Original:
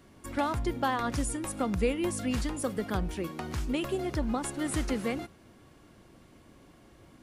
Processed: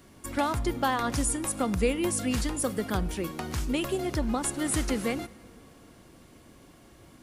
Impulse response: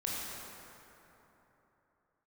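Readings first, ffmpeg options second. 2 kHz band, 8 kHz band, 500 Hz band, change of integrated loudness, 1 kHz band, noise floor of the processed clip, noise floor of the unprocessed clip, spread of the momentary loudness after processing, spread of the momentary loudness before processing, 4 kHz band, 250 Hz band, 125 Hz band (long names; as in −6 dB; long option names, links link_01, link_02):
+3.0 dB, +7.5 dB, +2.0 dB, +3.0 dB, +2.0 dB, −55 dBFS, −57 dBFS, 6 LU, 6 LU, +4.0 dB, +2.0 dB, +2.0 dB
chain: -filter_complex "[0:a]highshelf=frequency=5000:gain=7,asplit=2[link_01][link_02];[1:a]atrim=start_sample=2205,asetrate=38367,aresample=44100[link_03];[link_02][link_03]afir=irnorm=-1:irlink=0,volume=-25dB[link_04];[link_01][link_04]amix=inputs=2:normalize=0,volume=1.5dB"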